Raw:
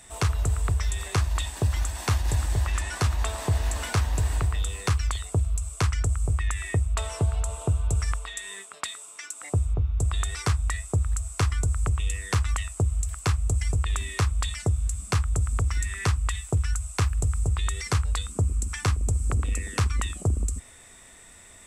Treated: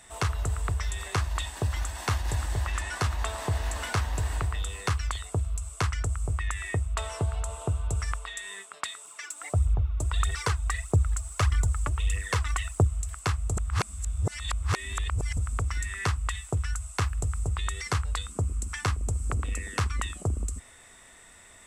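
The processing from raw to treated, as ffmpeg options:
ffmpeg -i in.wav -filter_complex "[0:a]asettb=1/sr,asplit=3[link_01][link_02][link_03];[link_01]atrim=end=9.054[link_04];[link_02]atrim=start=9.05:end=12.87,asetpts=PTS-STARTPTS,afade=type=in:duration=0.004:curve=qsin,afade=type=out:start_time=3.816:duration=0.004:curve=qsin,aphaser=in_gain=1:out_gain=1:delay=3.6:decay=0.55:speed=1.6:type=triangular[link_05];[link_03]atrim=start=12.866[link_06];[link_04][link_05]acrossfade=duration=0.004:curve1=hsin:curve2=qsin[link_07];[link_07][link_06]acrossfade=duration=0.004:curve1=qsin:curve2=hsin,asplit=3[link_08][link_09][link_10];[link_08]atrim=end=13.572[link_11];[link_09]atrim=start=13.568:end=15.372,asetpts=PTS-STARTPTS,areverse[link_12];[link_10]atrim=start=15.368[link_13];[link_11][link_12]acrossfade=duration=0.004:curve1=hsin:curve2=hsin[link_14];[link_14][link_13]acrossfade=duration=0.004:curve1=hsin:curve2=hsin,equalizer=frequency=1400:width_type=o:width=3:gain=5,bandreject=frequency=2400:width=24,volume=-4.5dB" out.wav

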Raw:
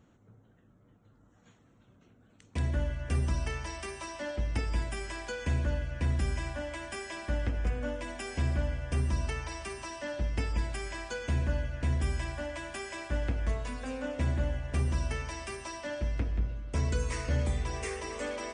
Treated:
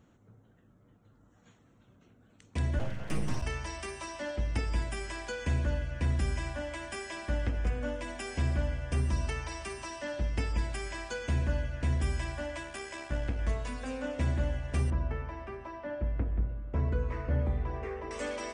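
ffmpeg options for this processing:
ffmpeg -i in.wav -filter_complex "[0:a]asplit=3[link_01][link_02][link_03];[link_01]afade=type=out:start_time=2.78:duration=0.02[link_04];[link_02]aeval=exprs='abs(val(0))':channel_layout=same,afade=type=in:start_time=2.78:duration=0.02,afade=type=out:start_time=3.41:duration=0.02[link_05];[link_03]afade=type=in:start_time=3.41:duration=0.02[link_06];[link_04][link_05][link_06]amix=inputs=3:normalize=0,asettb=1/sr,asplit=3[link_07][link_08][link_09];[link_07]atrim=end=12.634[link_10];[link_08]atrim=start=12.63:end=13.39,asetpts=PTS-STARTPTS,afade=type=in:duration=0.004:curve=qsin,afade=type=out:start_time=0.756:duration=0.004:curve=qsin,tremolo=f=71:d=0.4[link_11];[link_09]atrim=start=13.386[link_12];[link_10][link_11]acrossfade=duration=0.004:curve1=hsin:curve2=qsin[link_13];[link_13][link_12]acrossfade=duration=0.004:curve1=qsin:curve2=hsin,asettb=1/sr,asplit=3[link_14][link_15][link_16];[link_14]atrim=end=14.904[link_17];[link_15]atrim=start=14.9:end=18.11,asetpts=PTS-STARTPTS,afade=type=in:duration=0.004:curve=qsin,afade=type=out:start_time=3.206:duration=0.004:curve=qsin,lowpass=1400[link_18];[link_16]atrim=start=18.106[link_19];[link_17][link_18]acrossfade=duration=0.004:curve1=hsin:curve2=qsin[link_20];[link_20][link_19]acrossfade=duration=0.004:curve1=qsin:curve2=hsin" out.wav

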